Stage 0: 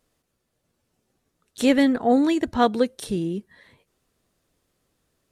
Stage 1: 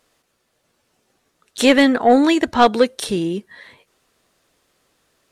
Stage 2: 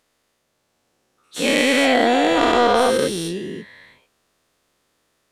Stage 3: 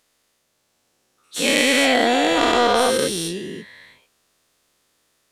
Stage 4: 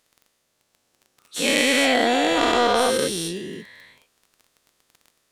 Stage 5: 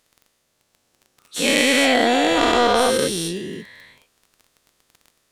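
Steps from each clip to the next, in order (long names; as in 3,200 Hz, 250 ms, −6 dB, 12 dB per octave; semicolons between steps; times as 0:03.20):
mid-hump overdrive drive 12 dB, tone 6,300 Hz, clips at −5.5 dBFS; level +4.5 dB
every bin's largest magnitude spread in time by 480 ms; level −9.5 dB
high-shelf EQ 2,600 Hz +7 dB; level −2 dB
surface crackle 17 per second −34 dBFS; level −2 dB
low-shelf EQ 150 Hz +4 dB; level +2 dB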